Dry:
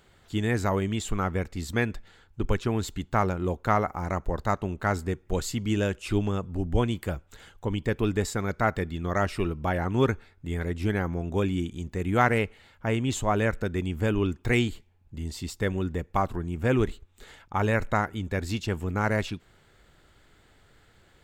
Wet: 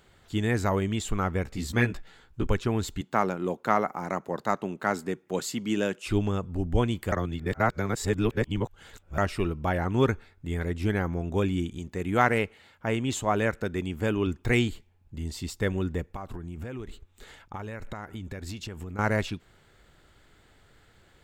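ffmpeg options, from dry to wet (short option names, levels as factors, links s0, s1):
-filter_complex "[0:a]asettb=1/sr,asplit=3[s0][s1][s2];[s0]atrim=end=1.444[s3];[s1]atrim=start=1.44:end=2.47,asetpts=PTS-STARTPTS,afade=t=in:d=0.004:c=qsin,afade=t=out:st=1.026:d=0.004:c=qsin,asplit=2[s4][s5];[s5]adelay=16,volume=0.708[s6];[s4][s6]amix=inputs=2:normalize=0,atrim=end_sample=45423[s7];[s2]atrim=start=2.466[s8];[s3][s7]acrossfade=d=0.004:c1=hsin:c2=qsin[s9];[s9][s8]acrossfade=d=0.004:c1=qsin:c2=hsin,asettb=1/sr,asplit=3[s10][s11][s12];[s10]atrim=end=3.014[s13];[s11]atrim=start=3.01:end=6.07,asetpts=PTS-STARTPTS,afade=t=in:d=0.004:c=qsin,afade=t=out:st=3.056:d=0.004:c=qsin,highpass=f=160:w=0.5412,highpass=f=160:w=1.3066[s14];[s12]atrim=start=6.066[s15];[s13][s14]acrossfade=d=0.004:c1=hsin:c2=qsin[s16];[s16][s15]acrossfade=d=0.004:c1=qsin:c2=hsin,asettb=1/sr,asplit=3[s17][s18][s19];[s17]atrim=end=11.794[s20];[s18]atrim=start=11.79:end=14.27,asetpts=PTS-STARTPTS,afade=t=in:d=0.004:c=qsin,afade=t=out:st=2.476:d=0.004:c=qsin,highpass=f=130:p=1[s21];[s19]atrim=start=14.266[s22];[s20][s21]acrossfade=d=0.004:c1=hsin:c2=qsin[s23];[s23][s22]acrossfade=d=0.004:c1=qsin:c2=hsin,asettb=1/sr,asplit=3[s24][s25][s26];[s24]atrim=end=16.094[s27];[s25]atrim=start=16.09:end=18.99,asetpts=PTS-STARTPTS,afade=t=in:d=0.004:c=qsin,afade=t=out:st=2.896:d=0.004:c=qsin,acompressor=threshold=0.0251:ratio=16:attack=3.2:release=140:knee=1:detection=peak[s28];[s26]atrim=start=18.986[s29];[s27][s28]acrossfade=d=0.004:c1=hsin:c2=qsin[s30];[s30][s29]acrossfade=d=0.004:c1=qsin:c2=hsin,asplit=3[s31][s32][s33];[s31]atrim=end=7.122[s34];[s32]atrim=start=7.118:end=9.182,asetpts=PTS-STARTPTS,areverse[s35];[s33]atrim=start=9.178[s36];[s34][s35]acrossfade=d=0.004:c1=hsin:c2=hsin[s37];[s37][s36]acrossfade=d=0.004:c1=hsin:c2=hsin"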